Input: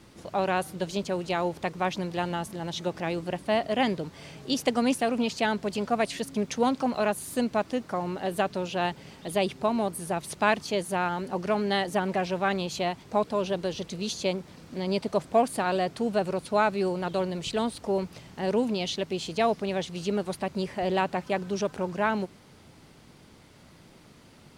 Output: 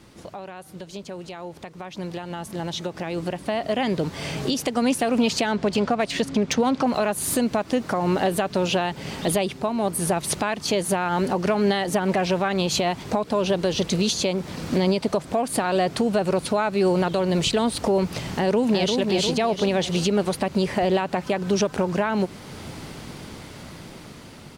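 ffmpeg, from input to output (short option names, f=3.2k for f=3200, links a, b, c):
-filter_complex "[0:a]asettb=1/sr,asplit=3[a][b][c];[a]atrim=end=5.464[d];[b]atrim=start=5.46:end=6.87,asetpts=PTS-STARTPTS,afade=t=in:d=0.004:c=qsin,afade=t=out:st=1.406:d=0.004:c=qsin,adynamicsmooth=sensitivity=5.5:basefreq=5.8k[e];[c]atrim=start=6.866[f];[d][e]acrossfade=d=0.004:c1=hsin:c2=qsin[g];[g][f]acrossfade=d=0.004:c1=qsin:c2=hsin,asplit=2[h][i];[i]afade=t=in:st=18.28:d=0.01,afade=t=out:st=18.98:d=0.01,aecho=0:1:350|700|1050|1400|1750|2100:0.562341|0.253054|0.113874|0.0512434|0.0230595|0.0103768[j];[h][j]amix=inputs=2:normalize=0,asplit=3[k][l][m];[k]atrim=end=9.69,asetpts=PTS-STARTPTS,afade=t=out:st=9.34:d=0.35:silence=0.316228[n];[l]atrim=start=9.69:end=9.83,asetpts=PTS-STARTPTS,volume=-10dB[o];[m]atrim=start=9.83,asetpts=PTS-STARTPTS,afade=t=in:d=0.35:silence=0.316228[p];[n][o][p]concat=n=3:v=0:a=1,acompressor=threshold=-27dB:ratio=6,alimiter=level_in=5.5dB:limit=-24dB:level=0:latency=1:release=433,volume=-5.5dB,dynaudnorm=f=210:g=31:m=14.5dB,volume=3dB"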